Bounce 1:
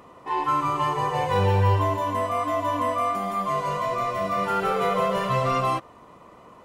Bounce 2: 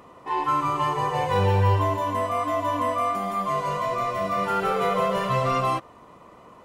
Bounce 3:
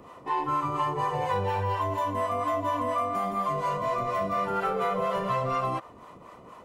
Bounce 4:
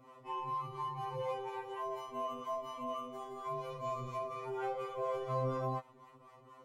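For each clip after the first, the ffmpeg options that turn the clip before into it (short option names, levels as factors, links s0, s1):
-af anull
-filter_complex "[0:a]acrossover=split=550[s0][s1];[s0]aeval=exprs='val(0)*(1-0.7/2+0.7/2*cos(2*PI*4.2*n/s))':c=same[s2];[s1]aeval=exprs='val(0)*(1-0.7/2-0.7/2*cos(2*PI*4.2*n/s))':c=same[s3];[s2][s3]amix=inputs=2:normalize=0,acrossover=split=520|1800[s4][s5][s6];[s4]acompressor=threshold=0.0141:ratio=4[s7];[s5]acompressor=threshold=0.0282:ratio=4[s8];[s6]acompressor=threshold=0.00316:ratio=4[s9];[s7][s8][s9]amix=inputs=3:normalize=0,volume=1.58"
-af "afftfilt=real='re*2.45*eq(mod(b,6),0)':imag='im*2.45*eq(mod(b,6),0)':win_size=2048:overlap=0.75,volume=0.376"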